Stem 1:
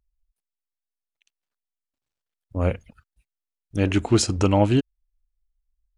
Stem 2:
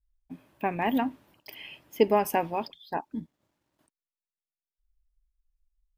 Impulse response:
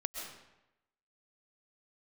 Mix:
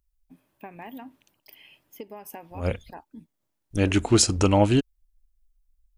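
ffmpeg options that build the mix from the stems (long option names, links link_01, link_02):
-filter_complex "[0:a]asubboost=boost=2.5:cutoff=57,volume=0dB[link_01];[1:a]acompressor=threshold=-27dB:ratio=10,volume=-9.5dB,asplit=2[link_02][link_03];[link_03]apad=whole_len=263547[link_04];[link_01][link_04]sidechaincompress=threshold=-51dB:ratio=5:attack=25:release=101[link_05];[link_05][link_02]amix=inputs=2:normalize=0,highshelf=frequency=6300:gain=8.5"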